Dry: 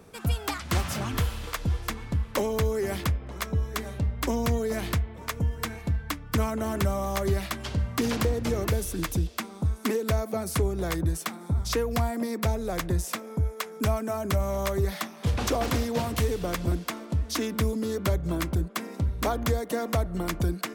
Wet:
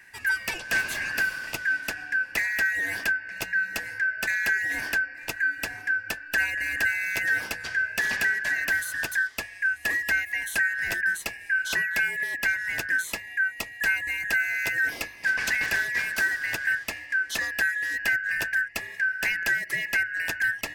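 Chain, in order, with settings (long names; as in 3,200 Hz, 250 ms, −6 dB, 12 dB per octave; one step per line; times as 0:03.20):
band-splitting scrambler in four parts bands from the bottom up 2143
mains-hum notches 50/100 Hz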